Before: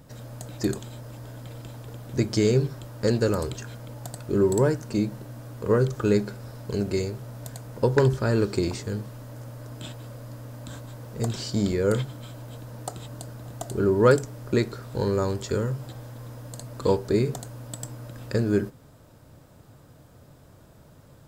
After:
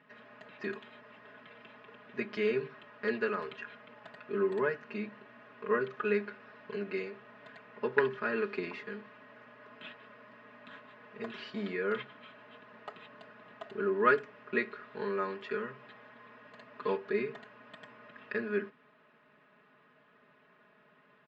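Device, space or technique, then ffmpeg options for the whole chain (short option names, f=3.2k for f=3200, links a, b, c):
phone earpiece: -af "highpass=360,equalizer=f=360:t=q:w=4:g=-3,equalizer=f=540:t=q:w=4:g=-7,equalizer=f=790:t=q:w=4:g=-7,equalizer=f=1.1k:t=q:w=4:g=4,equalizer=f=1.8k:t=q:w=4:g=9,equalizer=f=2.6k:t=q:w=4:g=7,lowpass=f=3k:w=0.5412,lowpass=f=3k:w=1.3066,aecho=1:1:4.8:0.98,volume=-7.5dB"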